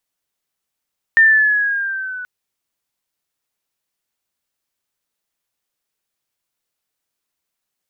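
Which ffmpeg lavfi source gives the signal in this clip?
-f lavfi -i "aevalsrc='pow(10,(-6-20*t/1.08)/20)*sin(2*PI*1810*1.08/(-3.5*log(2)/12)*(exp(-3.5*log(2)/12*t/1.08)-1))':d=1.08:s=44100"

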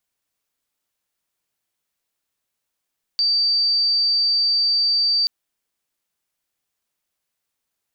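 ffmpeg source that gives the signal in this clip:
-f lavfi -i "sine=f=4640:d=2.08:r=44100,volume=2.56dB"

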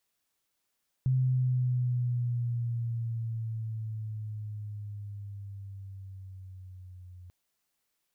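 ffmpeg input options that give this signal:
-f lavfi -i "aevalsrc='pow(10,(-22.5-23*t/6.24)/20)*sin(2*PI*130*6.24/(-6.5*log(2)/12)*(exp(-6.5*log(2)/12*t/6.24)-1))':d=6.24:s=44100"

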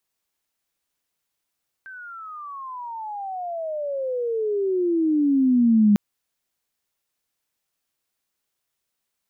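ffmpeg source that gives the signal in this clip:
-f lavfi -i "aevalsrc='pow(10,(-12+24.5*(t/4.1-1))/20)*sin(2*PI*1570*4.1/(-35.5*log(2)/12)*(exp(-35.5*log(2)/12*t/4.1)-1))':d=4.1:s=44100"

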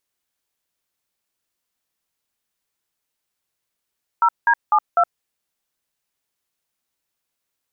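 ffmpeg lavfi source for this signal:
-f lavfi -i "aevalsrc='0.188*clip(min(mod(t,0.25),0.067-mod(t,0.25))/0.002,0,1)*(eq(floor(t/0.25),0)*(sin(2*PI*941*mod(t,0.25))+sin(2*PI*1336*mod(t,0.25)))+eq(floor(t/0.25),1)*(sin(2*PI*941*mod(t,0.25))+sin(2*PI*1633*mod(t,0.25)))+eq(floor(t/0.25),2)*(sin(2*PI*852*mod(t,0.25))+sin(2*PI*1209*mod(t,0.25)))+eq(floor(t/0.25),3)*(sin(2*PI*697*mod(t,0.25))+sin(2*PI*1336*mod(t,0.25))))':d=1:s=44100"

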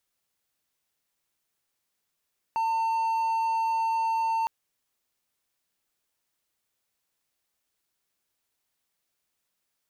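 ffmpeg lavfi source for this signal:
-f lavfi -i "aevalsrc='0.0841*(1-4*abs(mod(902*t+0.25,1)-0.5))':d=1.91:s=44100"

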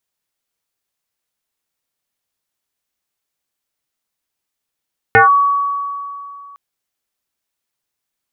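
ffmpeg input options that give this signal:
-f lavfi -i "aevalsrc='0.631*pow(10,-3*t/2.65)*sin(2*PI*1130*t+2.7*clip(1-t/0.14,0,1)*sin(2*PI*0.3*1130*t))':d=1.41:s=44100"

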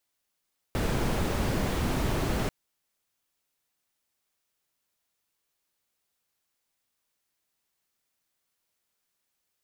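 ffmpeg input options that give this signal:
-f lavfi -i "anoisesrc=c=brown:a=0.209:d=1.74:r=44100:seed=1"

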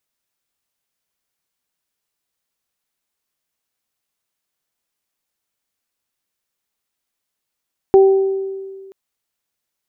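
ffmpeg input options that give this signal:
-f lavfi -i "aevalsrc='0.596*pow(10,-3*t/1.8)*sin(2*PI*387*t)+0.158*pow(10,-3*t/0.9)*sin(2*PI*774*t)':d=0.98:s=44100"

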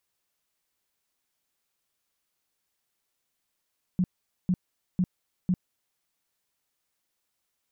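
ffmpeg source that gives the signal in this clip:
-f lavfi -i "aevalsrc='0.1*sin(2*PI*182*mod(t,0.5))*lt(mod(t,0.5),9/182)':d=2:s=44100"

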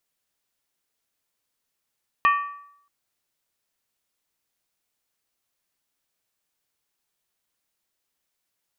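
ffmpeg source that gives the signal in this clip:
-f lavfi -i "aevalsrc='0.211*pow(10,-3*t/0.72)*sin(2*PI*1150*t)+0.106*pow(10,-3*t/0.57)*sin(2*PI*1833.1*t)+0.0531*pow(10,-3*t/0.493)*sin(2*PI*2456.4*t)+0.0266*pow(10,-3*t/0.475)*sin(2*PI*2640.4*t)+0.0133*pow(10,-3*t/0.442)*sin(2*PI*3050.9*t)':d=0.63:s=44100"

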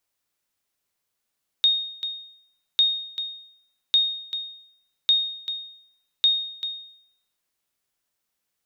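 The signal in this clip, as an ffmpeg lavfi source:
-f lavfi -i "aevalsrc='0.251*(sin(2*PI*3710*mod(t,1.15))*exp(-6.91*mod(t,1.15)/0.69)+0.266*sin(2*PI*3710*max(mod(t,1.15)-0.39,0))*exp(-6.91*max(mod(t,1.15)-0.39,0)/0.69))':d=5.75:s=44100"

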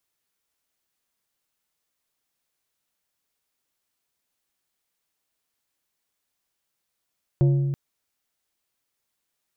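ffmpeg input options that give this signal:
-f lavfi -i "aevalsrc='0.2*pow(10,-3*t/1.97)*sin(2*PI*139*t)+0.0708*pow(10,-3*t/1.037)*sin(2*PI*347.5*t)+0.0251*pow(10,-3*t/0.746)*sin(2*PI*556*t)+0.00891*pow(10,-3*t/0.639)*sin(2*PI*695*t)+0.00316*pow(10,-3*t/0.531)*sin(2*PI*903.5*t)':d=0.33:s=44100"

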